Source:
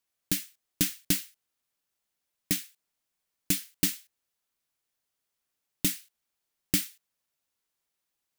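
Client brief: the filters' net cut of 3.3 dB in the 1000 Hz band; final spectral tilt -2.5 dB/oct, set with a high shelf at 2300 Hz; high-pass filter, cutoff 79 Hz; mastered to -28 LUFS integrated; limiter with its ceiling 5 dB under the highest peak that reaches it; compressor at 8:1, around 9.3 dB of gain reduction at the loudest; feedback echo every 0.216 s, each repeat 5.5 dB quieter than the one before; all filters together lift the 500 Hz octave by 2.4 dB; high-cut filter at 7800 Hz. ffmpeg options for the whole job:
-af "highpass=79,lowpass=7.8k,equalizer=f=500:t=o:g=5,equalizer=f=1k:t=o:g=-8,highshelf=f=2.3k:g=5.5,acompressor=threshold=-31dB:ratio=8,alimiter=limit=-17.5dB:level=0:latency=1,aecho=1:1:216|432|648|864|1080|1296|1512:0.531|0.281|0.149|0.079|0.0419|0.0222|0.0118,volume=14dB"

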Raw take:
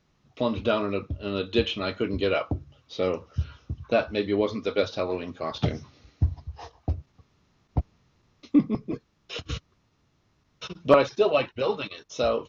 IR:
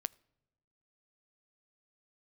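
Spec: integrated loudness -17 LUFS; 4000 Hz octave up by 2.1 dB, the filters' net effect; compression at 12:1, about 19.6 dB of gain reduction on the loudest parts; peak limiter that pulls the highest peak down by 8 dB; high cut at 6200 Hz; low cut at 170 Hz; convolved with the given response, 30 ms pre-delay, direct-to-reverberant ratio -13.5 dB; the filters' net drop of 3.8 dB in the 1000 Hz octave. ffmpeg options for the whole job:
-filter_complex "[0:a]highpass=170,lowpass=6.2k,equalizer=f=1k:t=o:g=-5.5,equalizer=f=4k:t=o:g=3.5,acompressor=threshold=-34dB:ratio=12,alimiter=level_in=4dB:limit=-24dB:level=0:latency=1,volume=-4dB,asplit=2[a][b];[1:a]atrim=start_sample=2205,adelay=30[c];[b][c]afir=irnorm=-1:irlink=0,volume=14.5dB[d];[a][d]amix=inputs=2:normalize=0,volume=11dB"

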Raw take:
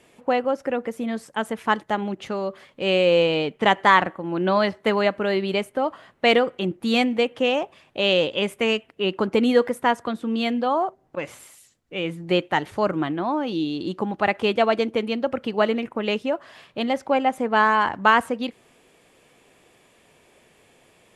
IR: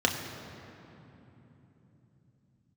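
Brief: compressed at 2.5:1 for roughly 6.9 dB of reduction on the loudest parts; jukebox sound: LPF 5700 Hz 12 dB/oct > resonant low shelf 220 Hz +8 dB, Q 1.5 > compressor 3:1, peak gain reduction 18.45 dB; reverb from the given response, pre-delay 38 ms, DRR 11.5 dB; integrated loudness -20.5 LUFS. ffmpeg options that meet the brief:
-filter_complex "[0:a]acompressor=threshold=-21dB:ratio=2.5,asplit=2[a][b];[1:a]atrim=start_sample=2205,adelay=38[c];[b][c]afir=irnorm=-1:irlink=0,volume=-23.5dB[d];[a][d]amix=inputs=2:normalize=0,lowpass=5.7k,lowshelf=f=220:t=q:w=1.5:g=8,acompressor=threshold=-42dB:ratio=3,volume=20dB"

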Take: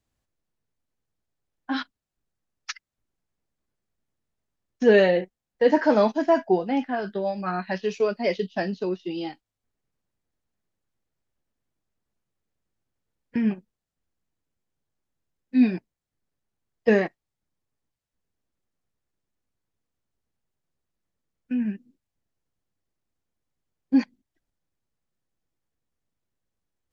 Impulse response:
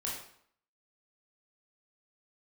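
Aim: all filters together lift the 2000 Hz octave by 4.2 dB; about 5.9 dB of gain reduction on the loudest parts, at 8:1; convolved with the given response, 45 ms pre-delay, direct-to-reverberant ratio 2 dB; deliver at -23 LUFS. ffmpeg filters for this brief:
-filter_complex "[0:a]equalizer=f=2k:t=o:g=5,acompressor=threshold=-18dB:ratio=8,asplit=2[a][b];[1:a]atrim=start_sample=2205,adelay=45[c];[b][c]afir=irnorm=-1:irlink=0,volume=-4.5dB[d];[a][d]amix=inputs=2:normalize=0,volume=2.5dB"

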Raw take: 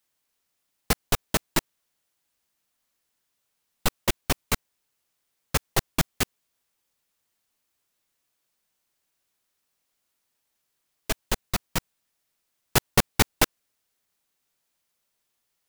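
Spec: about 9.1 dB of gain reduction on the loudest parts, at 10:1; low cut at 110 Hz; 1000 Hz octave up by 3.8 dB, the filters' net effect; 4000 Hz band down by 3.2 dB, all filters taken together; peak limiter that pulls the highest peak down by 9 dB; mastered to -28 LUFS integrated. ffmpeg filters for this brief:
-af "highpass=110,equalizer=f=1k:t=o:g=5,equalizer=f=4k:t=o:g=-4.5,acompressor=threshold=-24dB:ratio=10,volume=8.5dB,alimiter=limit=-9dB:level=0:latency=1"

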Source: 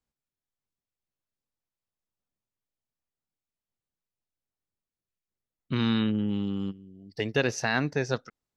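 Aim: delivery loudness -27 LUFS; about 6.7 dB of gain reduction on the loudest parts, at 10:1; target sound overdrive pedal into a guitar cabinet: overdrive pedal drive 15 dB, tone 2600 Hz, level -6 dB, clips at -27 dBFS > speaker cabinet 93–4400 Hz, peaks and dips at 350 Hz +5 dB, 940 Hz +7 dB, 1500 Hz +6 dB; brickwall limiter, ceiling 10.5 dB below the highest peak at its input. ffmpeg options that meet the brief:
-filter_complex "[0:a]acompressor=threshold=-27dB:ratio=10,alimiter=level_in=3dB:limit=-24dB:level=0:latency=1,volume=-3dB,asplit=2[a][b];[b]highpass=f=720:p=1,volume=15dB,asoftclip=type=tanh:threshold=-27dB[c];[a][c]amix=inputs=2:normalize=0,lowpass=f=2.6k:p=1,volume=-6dB,highpass=93,equalizer=f=350:t=q:w=4:g=5,equalizer=f=940:t=q:w=4:g=7,equalizer=f=1.5k:t=q:w=4:g=6,lowpass=f=4.4k:w=0.5412,lowpass=f=4.4k:w=1.3066,volume=10dB"

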